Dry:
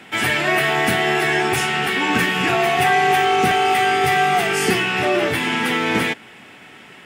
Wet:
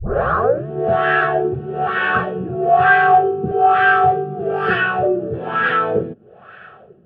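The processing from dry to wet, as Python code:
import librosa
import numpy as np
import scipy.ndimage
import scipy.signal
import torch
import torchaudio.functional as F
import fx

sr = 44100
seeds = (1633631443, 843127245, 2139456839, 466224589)

y = fx.tape_start_head(x, sr, length_s=0.67)
y = fx.fixed_phaser(y, sr, hz=1400.0, stages=8)
y = fx.filter_lfo_lowpass(y, sr, shape='sine', hz=1.1, low_hz=280.0, high_hz=1700.0, q=2.9)
y = y * 10.0 ** (3.0 / 20.0)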